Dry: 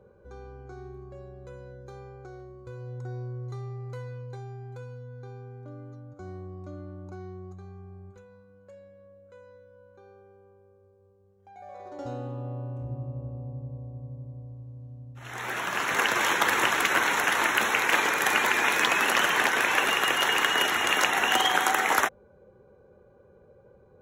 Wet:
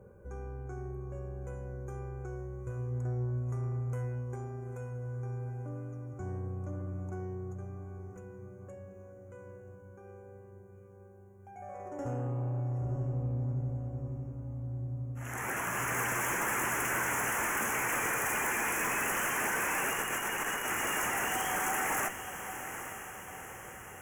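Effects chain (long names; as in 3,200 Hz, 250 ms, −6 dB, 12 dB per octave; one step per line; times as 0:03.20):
bass and treble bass +6 dB, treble +9 dB
0:19.93–0:20.81: compressor whose output falls as the input rises −27 dBFS, ratio −0.5
tube saturation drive 29 dB, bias 0.25
Butterworth band-reject 4,100 Hz, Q 0.96
feedback delay with all-pass diffusion 862 ms, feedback 57%, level −10 dB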